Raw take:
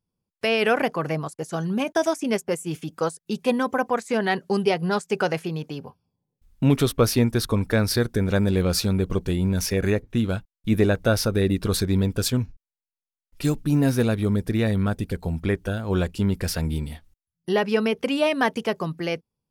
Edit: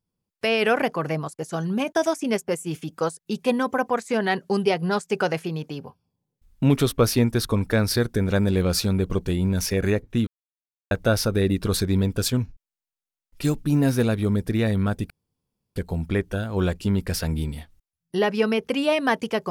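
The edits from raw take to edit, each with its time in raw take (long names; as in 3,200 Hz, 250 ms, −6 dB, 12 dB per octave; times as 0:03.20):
0:10.27–0:10.91: silence
0:15.10: splice in room tone 0.66 s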